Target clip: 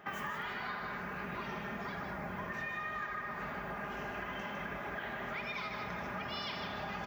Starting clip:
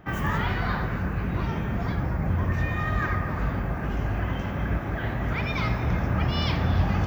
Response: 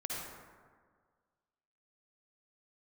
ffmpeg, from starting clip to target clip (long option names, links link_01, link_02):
-af "highpass=frequency=870:poles=1,highshelf=frequency=5100:gain=-4,aecho=1:1:4.9:0.49,aecho=1:1:155:0.473,acompressor=threshold=-39dB:ratio=6,volume=1.5dB"